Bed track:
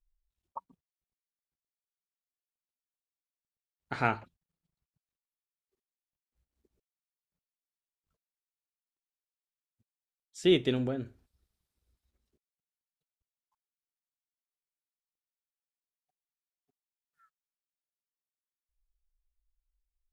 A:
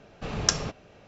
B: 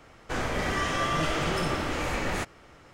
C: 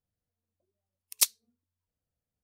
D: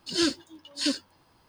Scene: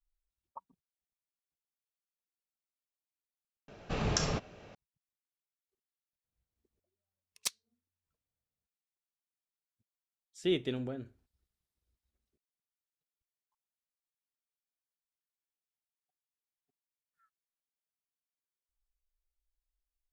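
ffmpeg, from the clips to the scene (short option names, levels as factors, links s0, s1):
-filter_complex "[0:a]volume=0.473[s0];[1:a]alimiter=level_in=4.47:limit=0.891:release=50:level=0:latency=1[s1];[3:a]adynamicsmooth=sensitivity=1.5:basefreq=4700[s2];[s0]asplit=2[s3][s4];[s3]atrim=end=3.684[s5];[s1]atrim=end=1.07,asetpts=PTS-STARTPTS,volume=0.224[s6];[s4]atrim=start=4.746[s7];[s2]atrim=end=2.43,asetpts=PTS-STARTPTS,volume=0.422,afade=t=in:d=0.004:c=hsin,afade=t=out:st=2.426:d=0.004:c=hsin,adelay=6240[s8];[s5][s6]acrossfade=d=0.004:c1=hsin:c2=hsin[s9];[s9][s7]acrossfade=d=0.004:c1=hsin:c2=hsin[s10];[s10][s8]amix=inputs=2:normalize=0"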